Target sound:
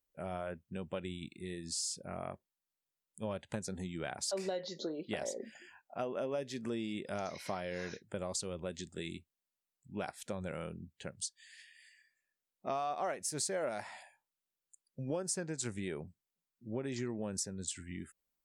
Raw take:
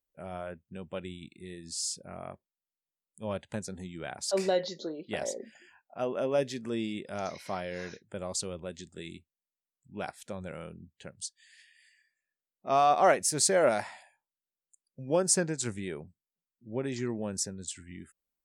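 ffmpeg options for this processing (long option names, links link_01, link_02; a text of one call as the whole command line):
ffmpeg -i in.wav -af "acompressor=threshold=-36dB:ratio=6,volume=1.5dB" out.wav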